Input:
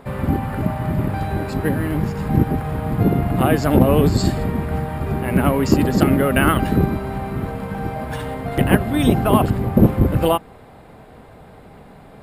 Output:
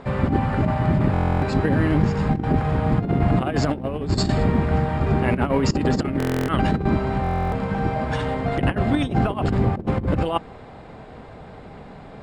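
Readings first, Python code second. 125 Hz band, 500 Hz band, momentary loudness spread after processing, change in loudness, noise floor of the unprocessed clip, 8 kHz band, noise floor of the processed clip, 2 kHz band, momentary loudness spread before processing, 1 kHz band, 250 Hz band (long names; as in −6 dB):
−2.0 dB, −3.5 dB, 21 LU, −3.0 dB, −44 dBFS, −6.5 dB, −41 dBFS, −3.0 dB, 10 LU, −1.5 dB, −3.5 dB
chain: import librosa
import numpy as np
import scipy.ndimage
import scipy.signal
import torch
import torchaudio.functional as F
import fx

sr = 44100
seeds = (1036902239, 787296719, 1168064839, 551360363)

y = fx.over_compress(x, sr, threshold_db=-19.0, ratio=-0.5)
y = scipy.signal.sosfilt(scipy.signal.butter(4, 7000.0, 'lowpass', fs=sr, output='sos'), y)
y = fx.buffer_glitch(y, sr, at_s=(1.12, 6.18, 7.22), block=1024, repeats=12)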